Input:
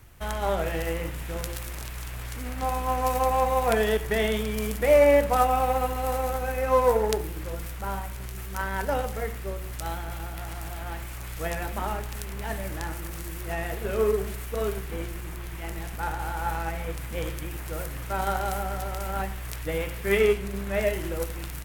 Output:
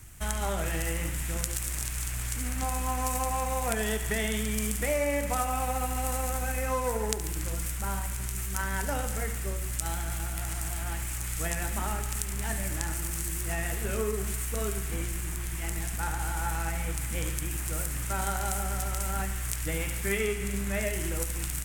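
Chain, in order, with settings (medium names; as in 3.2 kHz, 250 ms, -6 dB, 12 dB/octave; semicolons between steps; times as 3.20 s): graphic EQ 500/1000/4000/8000 Hz -8/-4/-4/+11 dB; on a send: thinning echo 71 ms, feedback 77%, high-pass 420 Hz, level -13.5 dB; on the sum: compression 3:1, threshold -29 dBFS, peak gain reduction 7.5 dB; trim +2.5 dB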